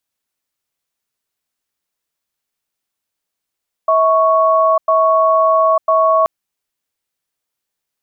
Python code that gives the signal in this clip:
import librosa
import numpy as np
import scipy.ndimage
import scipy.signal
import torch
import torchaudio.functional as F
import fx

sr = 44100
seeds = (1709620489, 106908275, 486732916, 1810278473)

y = fx.cadence(sr, length_s=2.38, low_hz=646.0, high_hz=1110.0, on_s=0.9, off_s=0.1, level_db=-12.0)